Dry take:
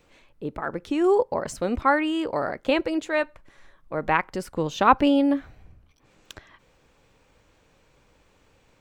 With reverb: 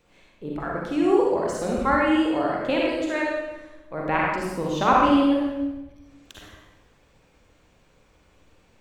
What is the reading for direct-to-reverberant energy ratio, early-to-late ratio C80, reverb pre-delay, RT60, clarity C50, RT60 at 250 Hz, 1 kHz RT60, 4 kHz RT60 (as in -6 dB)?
-3.5 dB, 1.5 dB, 38 ms, 1.1 s, -1.5 dB, 1.3 s, 1.0 s, 0.95 s